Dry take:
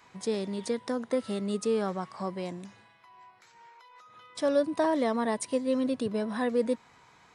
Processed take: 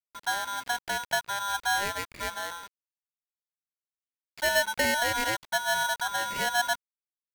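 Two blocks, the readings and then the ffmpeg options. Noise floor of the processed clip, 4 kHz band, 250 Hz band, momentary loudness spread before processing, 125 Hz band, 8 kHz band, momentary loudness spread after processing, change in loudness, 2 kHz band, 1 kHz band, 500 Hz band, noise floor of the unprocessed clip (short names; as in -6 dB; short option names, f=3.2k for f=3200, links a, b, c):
under -85 dBFS, +12.5 dB, -14.5 dB, 9 LU, -6.5 dB, +10.5 dB, 9 LU, +2.0 dB, +15.5 dB, +6.5 dB, -6.0 dB, -59 dBFS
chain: -af "anlmdn=0.0158,aresample=8000,aeval=exprs='val(0)*gte(abs(val(0)),0.00668)':c=same,aresample=44100,aeval=exprs='val(0)*sgn(sin(2*PI*1200*n/s))':c=same"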